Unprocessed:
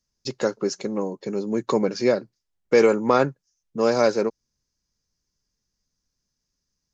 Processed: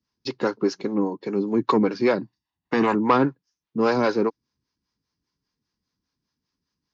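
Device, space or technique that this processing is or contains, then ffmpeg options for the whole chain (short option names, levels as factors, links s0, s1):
guitar amplifier with harmonic tremolo: -filter_complex "[0:a]acrossover=split=420[s0][s1];[s0]aeval=exprs='val(0)*(1-0.7/2+0.7/2*cos(2*PI*5*n/s))':c=same[s2];[s1]aeval=exprs='val(0)*(1-0.7/2-0.7/2*cos(2*PI*5*n/s))':c=same[s3];[s2][s3]amix=inputs=2:normalize=0,asoftclip=type=tanh:threshold=0.178,highpass=81,equalizer=f=290:t=q:w=4:g=7,equalizer=f=580:t=q:w=4:g=-7,equalizer=f=1000:t=q:w=4:g=5,lowpass=f=4500:w=0.5412,lowpass=f=4500:w=1.3066,asettb=1/sr,asplit=3[s4][s5][s6];[s4]atrim=end=2.184[s7];[s5]atrim=start=2.18:end=2.95,asetpts=PTS-STARTPTS,afade=t=in:d=0.004:c=qsin,afade=t=out:st=0.766:d=0.004:c=qsin,aecho=1:1:1.1:0.64,atrim=end_sample=33957[s8];[s6]atrim=start=2.946[s9];[s7][s8]acrossfade=d=0.004:c1=hsin:c2=qsin[s10];[s10][s9]acrossfade=d=0.004:c1=qsin:c2=hsin,volume=1.88"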